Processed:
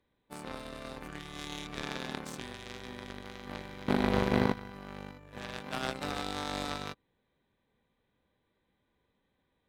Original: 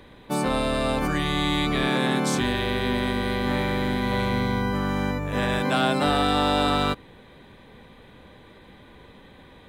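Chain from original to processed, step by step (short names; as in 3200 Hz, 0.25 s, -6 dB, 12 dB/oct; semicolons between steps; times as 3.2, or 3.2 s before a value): 3.88–4.53 bell 320 Hz +10.5 dB 2 oct; added harmonics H 3 -10 dB, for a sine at -8 dBFS; gain -3 dB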